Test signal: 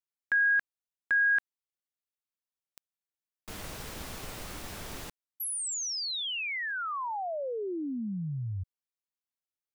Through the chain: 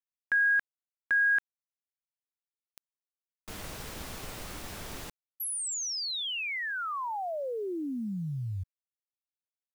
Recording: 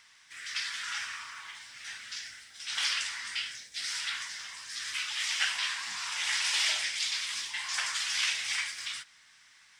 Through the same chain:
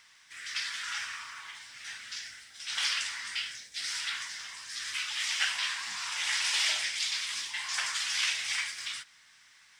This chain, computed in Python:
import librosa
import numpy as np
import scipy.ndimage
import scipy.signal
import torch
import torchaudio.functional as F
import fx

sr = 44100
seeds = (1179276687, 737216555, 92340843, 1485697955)

y = fx.quant_companded(x, sr, bits=8)